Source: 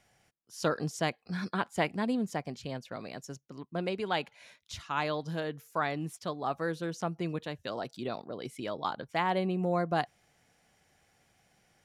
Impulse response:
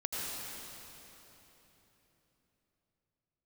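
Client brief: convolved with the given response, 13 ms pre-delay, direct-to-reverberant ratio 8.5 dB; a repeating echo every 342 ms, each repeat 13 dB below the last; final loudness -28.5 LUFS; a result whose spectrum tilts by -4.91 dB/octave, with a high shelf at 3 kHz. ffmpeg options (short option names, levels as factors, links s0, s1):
-filter_complex "[0:a]highshelf=f=3000:g=4.5,aecho=1:1:342|684|1026:0.224|0.0493|0.0108,asplit=2[s0][s1];[1:a]atrim=start_sample=2205,adelay=13[s2];[s1][s2]afir=irnorm=-1:irlink=0,volume=0.224[s3];[s0][s3]amix=inputs=2:normalize=0,volume=1.68"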